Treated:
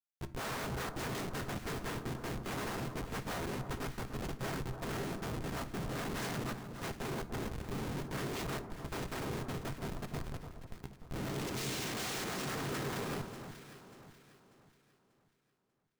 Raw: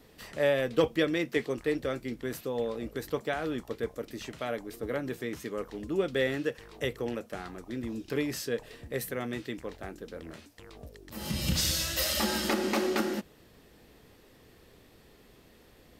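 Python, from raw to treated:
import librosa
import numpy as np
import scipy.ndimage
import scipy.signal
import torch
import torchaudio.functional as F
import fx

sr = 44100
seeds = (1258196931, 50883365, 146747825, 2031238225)

y = fx.pitch_ramps(x, sr, semitones=3.5, every_ms=188)
y = fx.low_shelf(y, sr, hz=200.0, db=8.5)
y = fx.noise_vocoder(y, sr, seeds[0], bands=3)
y = fx.schmitt(y, sr, flips_db=-37.5)
y = fx.echo_alternate(y, sr, ms=295, hz=1400.0, feedback_pct=61, wet_db=-8)
y = fx.rev_fdn(y, sr, rt60_s=0.48, lf_ratio=1.55, hf_ratio=0.75, size_ms=44.0, drr_db=10.0)
y = F.gain(torch.from_numpy(y), -6.0).numpy()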